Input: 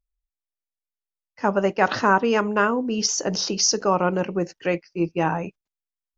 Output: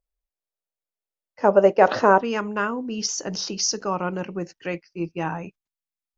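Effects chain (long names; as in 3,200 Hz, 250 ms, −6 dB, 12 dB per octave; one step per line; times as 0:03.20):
parametric band 540 Hz +12 dB 1.3 octaves, from 0:02.21 −3.5 dB
level −3.5 dB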